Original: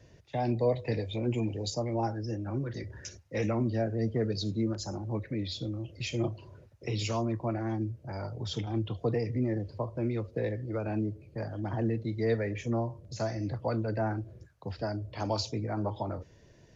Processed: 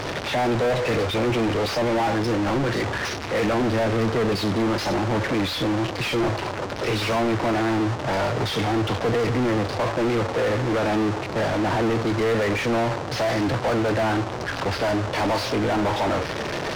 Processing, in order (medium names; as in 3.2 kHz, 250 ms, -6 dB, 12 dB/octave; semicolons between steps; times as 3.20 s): one-bit delta coder 32 kbps, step -42 dBFS; overdrive pedal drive 38 dB, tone 1.9 kHz, clips at -17.5 dBFS; trim +2.5 dB